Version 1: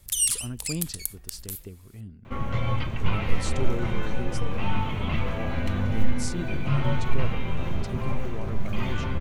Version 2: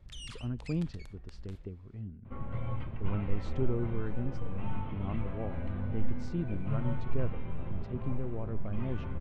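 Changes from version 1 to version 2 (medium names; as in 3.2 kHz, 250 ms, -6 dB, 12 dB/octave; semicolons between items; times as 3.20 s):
second sound -8.5 dB; master: add tape spacing loss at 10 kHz 40 dB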